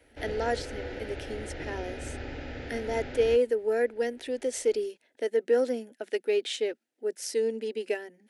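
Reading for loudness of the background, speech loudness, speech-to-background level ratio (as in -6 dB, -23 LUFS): -39.5 LUFS, -30.0 LUFS, 9.5 dB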